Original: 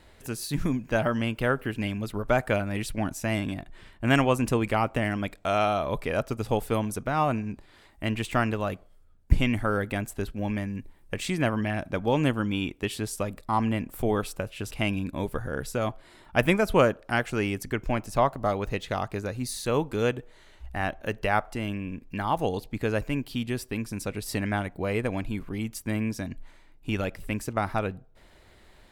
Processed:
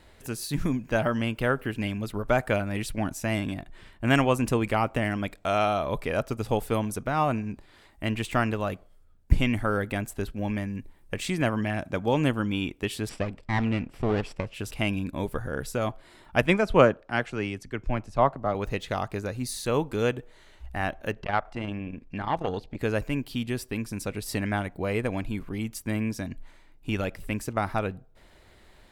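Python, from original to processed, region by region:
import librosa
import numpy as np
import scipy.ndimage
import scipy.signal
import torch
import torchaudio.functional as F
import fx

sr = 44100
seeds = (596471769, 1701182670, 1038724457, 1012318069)

y = fx.chain(x, sr, fx.highpass(hz=49.0, slope=12),
    fx.peak_eq(hz=7200.0, db=6.0, octaves=0.28), at=(11.41, 12.14))
y = fx.chain(y, sr, fx.lower_of_two(delay_ms=0.38),
    fx.lowpass(hz=5000.0, slope=12), at=(13.09, 14.54))
y = fx.chain(y, sr, fx.air_absorb(metres=69.0),
    fx.band_widen(depth_pct=70), at=(16.42, 18.55))
y = fx.chain(y, sr, fx.lowpass(hz=5000.0, slope=12),
    fx.transformer_sat(knee_hz=780.0), at=(21.11, 22.79))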